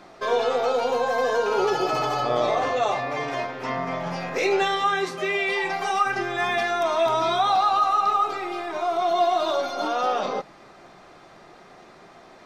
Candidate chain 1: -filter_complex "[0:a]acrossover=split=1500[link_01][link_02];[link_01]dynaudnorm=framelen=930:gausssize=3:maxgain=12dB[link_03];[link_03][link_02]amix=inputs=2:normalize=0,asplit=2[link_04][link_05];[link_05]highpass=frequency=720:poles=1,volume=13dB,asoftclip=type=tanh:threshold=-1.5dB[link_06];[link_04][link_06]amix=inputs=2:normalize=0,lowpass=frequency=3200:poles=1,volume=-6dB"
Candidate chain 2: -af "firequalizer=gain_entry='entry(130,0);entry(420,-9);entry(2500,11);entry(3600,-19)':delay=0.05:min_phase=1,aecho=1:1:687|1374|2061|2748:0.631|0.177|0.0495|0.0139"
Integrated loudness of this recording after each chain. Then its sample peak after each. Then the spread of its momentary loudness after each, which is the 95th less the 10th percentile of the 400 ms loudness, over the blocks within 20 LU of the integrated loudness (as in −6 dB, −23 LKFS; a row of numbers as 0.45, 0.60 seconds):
−12.0, −23.0 LKFS; −2.0, −9.0 dBFS; 8, 11 LU